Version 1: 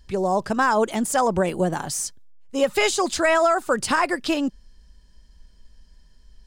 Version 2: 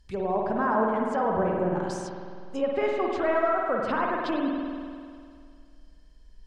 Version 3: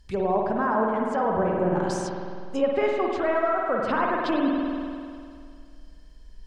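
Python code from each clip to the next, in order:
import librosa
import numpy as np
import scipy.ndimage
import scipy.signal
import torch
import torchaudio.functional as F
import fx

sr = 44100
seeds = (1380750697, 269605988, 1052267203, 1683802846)

y1 = fx.env_lowpass_down(x, sr, base_hz=1400.0, full_db=-19.0)
y1 = fx.rev_spring(y1, sr, rt60_s=2.2, pass_ms=(50,), chirp_ms=60, drr_db=-1.0)
y1 = y1 * librosa.db_to_amplitude(-7.0)
y2 = fx.rider(y1, sr, range_db=3, speed_s=0.5)
y2 = y2 * librosa.db_to_amplitude(2.5)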